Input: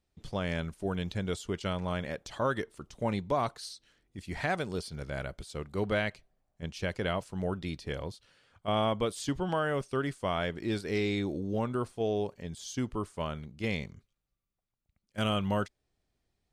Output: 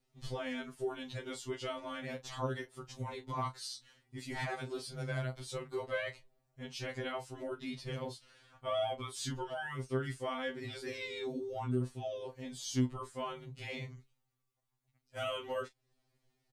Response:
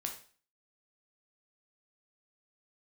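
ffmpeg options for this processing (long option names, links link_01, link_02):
-filter_complex "[0:a]alimiter=level_in=5.5dB:limit=-24dB:level=0:latency=1:release=323,volume=-5.5dB,asplit=2[link_01][link_02];[link_02]adelay=32,volume=-12dB[link_03];[link_01][link_03]amix=inputs=2:normalize=0,afftfilt=real='re*2.45*eq(mod(b,6),0)':imag='im*2.45*eq(mod(b,6),0)':win_size=2048:overlap=0.75,volume=4.5dB"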